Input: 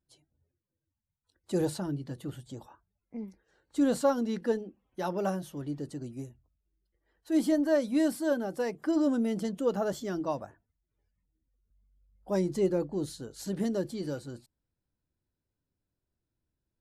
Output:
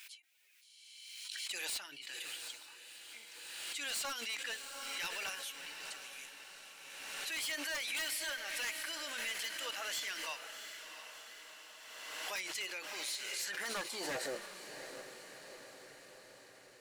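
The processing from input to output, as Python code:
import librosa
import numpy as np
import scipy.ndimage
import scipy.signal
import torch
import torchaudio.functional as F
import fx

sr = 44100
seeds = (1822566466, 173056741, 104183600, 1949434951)

p1 = fx.filter_sweep_highpass(x, sr, from_hz=2400.0, to_hz=120.0, start_s=13.28, end_s=15.43, q=4.5)
p2 = 10.0 ** (-36.5 / 20.0) * (np.abs((p1 / 10.0 ** (-36.5 / 20.0) + 3.0) % 4.0 - 2.0) - 1.0)
p3 = fx.low_shelf(p2, sr, hz=270.0, db=-4.5)
p4 = p3 + fx.echo_diffused(p3, sr, ms=702, feedback_pct=62, wet_db=-8.5, dry=0)
p5 = fx.pre_swell(p4, sr, db_per_s=29.0)
y = p5 * 10.0 ** (4.0 / 20.0)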